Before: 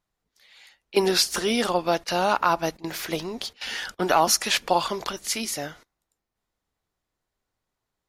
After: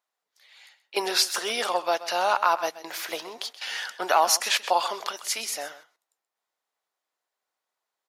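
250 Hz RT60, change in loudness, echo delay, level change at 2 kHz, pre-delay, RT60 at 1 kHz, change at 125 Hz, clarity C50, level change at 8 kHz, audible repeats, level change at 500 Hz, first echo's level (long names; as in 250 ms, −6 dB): no reverb audible, −1.5 dB, 129 ms, −0.5 dB, no reverb audible, no reverb audible, below −20 dB, no reverb audible, −1.0 dB, 1, −4.0 dB, −15.0 dB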